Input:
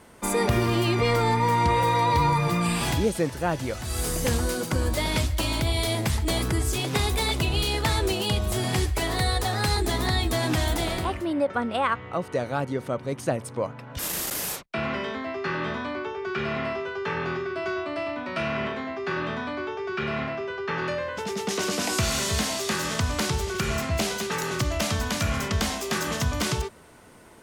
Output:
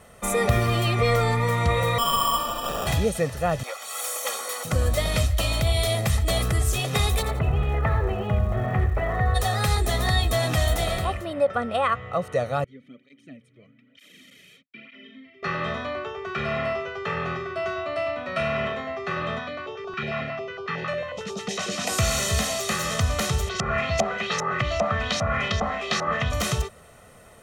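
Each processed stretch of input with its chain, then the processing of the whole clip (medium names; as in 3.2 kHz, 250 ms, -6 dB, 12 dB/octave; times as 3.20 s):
1.98–2.87 s: high-pass 760 Hz 24 dB/octave + sample-rate reducer 2.1 kHz + flutter echo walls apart 11.9 m, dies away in 0.58 s
3.63–4.65 s: comb filter that takes the minimum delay 3.6 ms + high-pass 490 Hz 24 dB/octave + comb 0.9 ms, depth 44%
7.21–9.34 s: low-pass 1.9 kHz 24 dB/octave + feedback delay 86 ms, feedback 29%, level -10.5 dB + crackle 560 per s -45 dBFS
12.64–15.43 s: vowel filter i + cancelling through-zero flanger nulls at 1.1 Hz, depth 4.3 ms
19.39–21.87 s: band-pass 110–6600 Hz + step-sequenced notch 11 Hz 360–2000 Hz
23.48–26.29 s: bass shelf 82 Hz -10 dB + LFO low-pass saw up 2.5 Hz 810–6200 Hz + whistle 2 kHz -46 dBFS
whole clip: band-stop 4.8 kHz, Q 8.2; comb 1.6 ms, depth 66%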